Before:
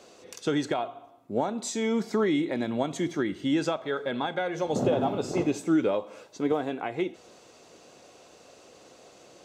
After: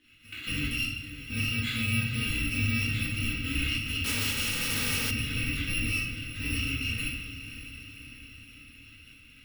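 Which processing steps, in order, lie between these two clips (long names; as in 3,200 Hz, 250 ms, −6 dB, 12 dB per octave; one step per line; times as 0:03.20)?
samples in bit-reversed order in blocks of 128 samples
noise gate −51 dBFS, range −13 dB
drawn EQ curve 100 Hz 0 dB, 170 Hz −16 dB, 310 Hz +14 dB, 550 Hz −24 dB, 810 Hz −23 dB, 1,900 Hz +1 dB, 2,800 Hz +6 dB, 6,000 Hz −19 dB, 9,400 Hz −22 dB
brickwall limiter −33 dBFS, peak gain reduction 11 dB
on a send: feedback delay with all-pass diffusion 562 ms, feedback 59%, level −11.5 dB
on the sum: rectangular room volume 160 cubic metres, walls mixed, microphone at 2 metres
0:04.04–0:05.11: every bin compressed towards the loudest bin 2 to 1
level +4.5 dB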